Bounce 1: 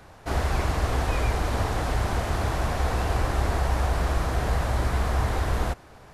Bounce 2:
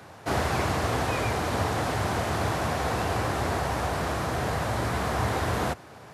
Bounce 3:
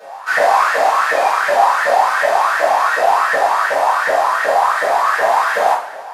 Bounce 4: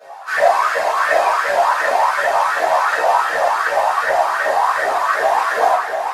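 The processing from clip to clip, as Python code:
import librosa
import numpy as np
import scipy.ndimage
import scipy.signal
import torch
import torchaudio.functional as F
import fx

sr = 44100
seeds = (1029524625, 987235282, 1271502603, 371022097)

y1 = fx.rider(x, sr, range_db=3, speed_s=2.0)
y1 = scipy.signal.sosfilt(scipy.signal.butter(4, 93.0, 'highpass', fs=sr, output='sos'), y1)
y1 = F.gain(torch.from_numpy(y1), 1.5).numpy()
y2 = fx.filter_lfo_highpass(y1, sr, shape='saw_up', hz=2.7, low_hz=530.0, high_hz=1900.0, q=7.7)
y2 = fx.rev_double_slope(y2, sr, seeds[0], early_s=0.39, late_s=1.7, knee_db=-17, drr_db=-9.0)
y2 = F.gain(torch.from_numpy(y2), -2.5).numpy()
y3 = fx.chorus_voices(y2, sr, voices=6, hz=0.71, base_ms=14, depth_ms=1.7, mix_pct=60)
y3 = y3 + 10.0 ** (-6.0 / 20.0) * np.pad(y3, (int(688 * sr / 1000.0), 0))[:len(y3)]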